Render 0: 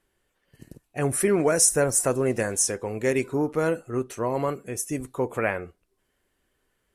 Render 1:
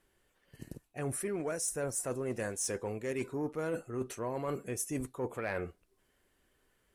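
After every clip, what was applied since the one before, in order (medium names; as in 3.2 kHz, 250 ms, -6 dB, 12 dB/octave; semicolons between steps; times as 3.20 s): reverse; compression 12:1, threshold -31 dBFS, peak gain reduction 17 dB; reverse; saturation -24.5 dBFS, distortion -23 dB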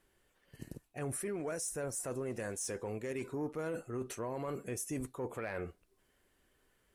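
peak limiter -31 dBFS, peak gain reduction 6 dB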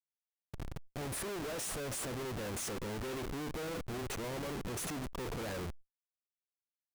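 in parallel at -2.5 dB: compression 5:1, threshold -47 dBFS, peak gain reduction 12 dB; on the sum: Schmitt trigger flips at -43.5 dBFS; decay stretcher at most 130 dB/s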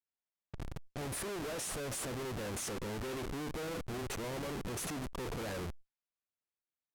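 level-controlled noise filter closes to 2.5 kHz, open at -38 dBFS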